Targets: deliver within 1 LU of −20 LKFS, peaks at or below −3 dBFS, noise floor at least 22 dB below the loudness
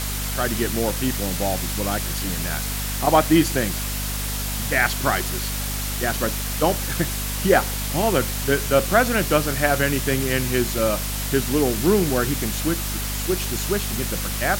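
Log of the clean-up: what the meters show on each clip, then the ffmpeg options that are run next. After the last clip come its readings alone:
mains hum 50 Hz; hum harmonics up to 250 Hz; level of the hum −26 dBFS; background noise floor −27 dBFS; target noise floor −44 dBFS; integrated loudness −22.0 LKFS; sample peak −4.0 dBFS; target loudness −20.0 LKFS
→ -af "bandreject=frequency=50:width_type=h:width=6,bandreject=frequency=100:width_type=h:width=6,bandreject=frequency=150:width_type=h:width=6,bandreject=frequency=200:width_type=h:width=6,bandreject=frequency=250:width_type=h:width=6"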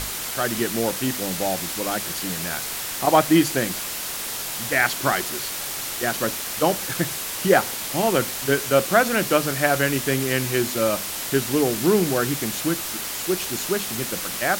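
mains hum none found; background noise floor −30 dBFS; target noise floor −45 dBFS
→ -af "afftdn=noise_reduction=15:noise_floor=-30"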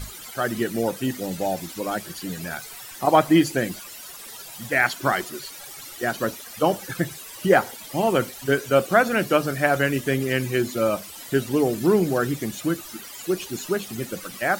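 background noise floor −40 dBFS; target noise floor −46 dBFS
→ -af "afftdn=noise_reduction=6:noise_floor=-40"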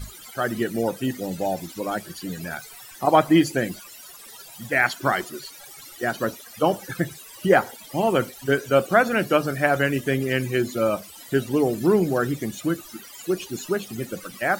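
background noise floor −44 dBFS; target noise floor −46 dBFS
→ -af "afftdn=noise_reduction=6:noise_floor=-44"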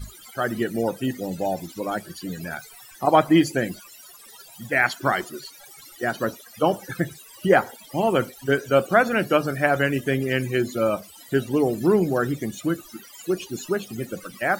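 background noise floor −47 dBFS; integrated loudness −23.5 LKFS; sample peak −4.0 dBFS; target loudness −20.0 LKFS
→ -af "volume=3.5dB,alimiter=limit=-3dB:level=0:latency=1"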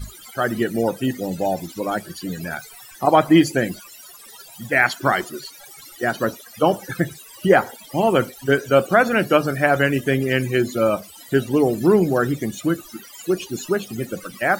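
integrated loudness −20.5 LKFS; sample peak −3.0 dBFS; background noise floor −43 dBFS

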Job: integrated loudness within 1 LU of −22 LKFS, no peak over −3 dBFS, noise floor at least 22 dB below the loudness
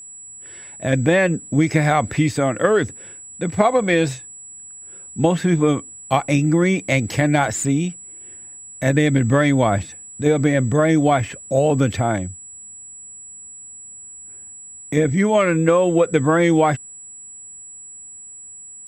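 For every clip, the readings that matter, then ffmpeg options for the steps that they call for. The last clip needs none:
interfering tone 7,800 Hz; level of the tone −36 dBFS; integrated loudness −18.5 LKFS; sample peak −2.0 dBFS; target loudness −22.0 LKFS
→ -af "bandreject=frequency=7800:width=30"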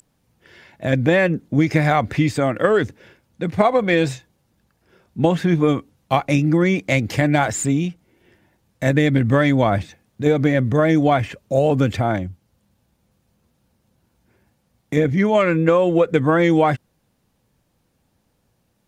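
interfering tone none found; integrated loudness −18.5 LKFS; sample peak −2.0 dBFS; target loudness −22.0 LKFS
→ -af "volume=-3.5dB"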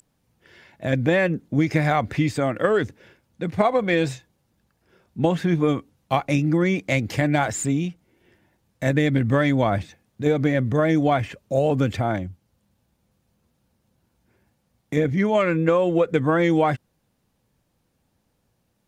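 integrated loudness −22.0 LKFS; sample peak −5.5 dBFS; background noise floor −71 dBFS

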